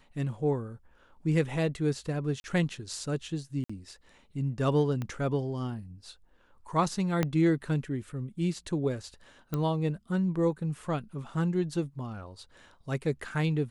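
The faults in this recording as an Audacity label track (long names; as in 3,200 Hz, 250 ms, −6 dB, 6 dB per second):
2.400000	2.440000	drop-out 41 ms
3.640000	3.690000	drop-out 55 ms
5.020000	5.020000	click −22 dBFS
7.230000	7.230000	click −13 dBFS
9.540000	9.540000	click −18 dBFS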